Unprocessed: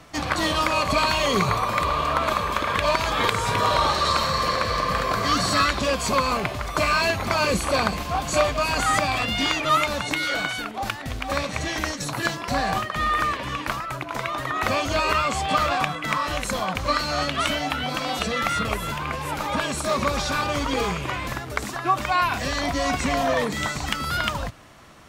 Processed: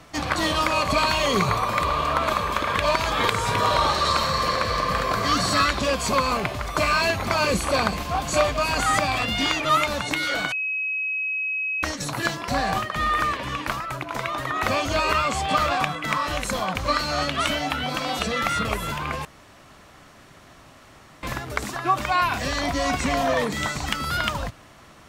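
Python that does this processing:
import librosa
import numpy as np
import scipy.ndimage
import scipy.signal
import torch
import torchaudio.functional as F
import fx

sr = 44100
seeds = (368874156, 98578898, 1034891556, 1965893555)

y = fx.edit(x, sr, fx.bleep(start_s=10.52, length_s=1.31, hz=2550.0, db=-23.5),
    fx.room_tone_fill(start_s=19.25, length_s=1.98), tone=tone)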